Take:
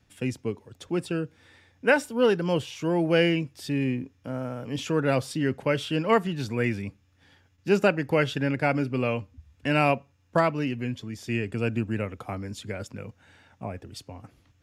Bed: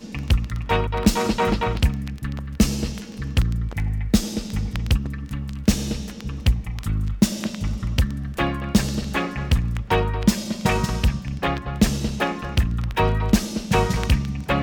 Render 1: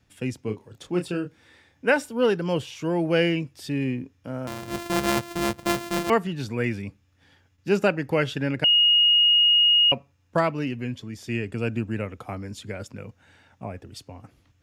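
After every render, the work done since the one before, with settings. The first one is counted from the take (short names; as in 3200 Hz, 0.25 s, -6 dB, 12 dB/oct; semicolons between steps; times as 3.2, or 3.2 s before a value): 0.4–1.86 doubler 28 ms -6 dB; 4.47–6.1 sample sorter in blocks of 128 samples; 8.64–9.92 bleep 2870 Hz -14.5 dBFS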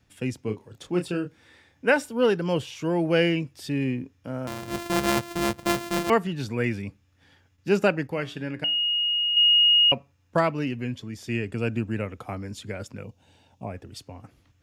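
8.07–9.37 resonator 58 Hz, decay 0.43 s, harmonics odd; 13.04–13.67 band shelf 1600 Hz -12.5 dB 1.1 oct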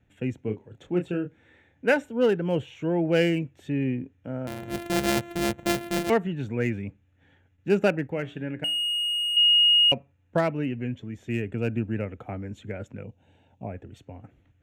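Wiener smoothing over 9 samples; bell 1100 Hz -10 dB 0.42 oct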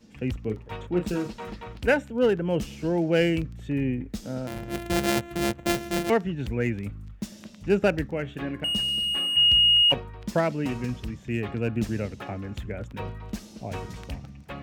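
add bed -17 dB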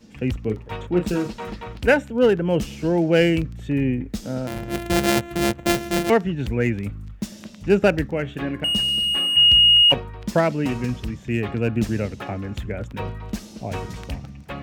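gain +5 dB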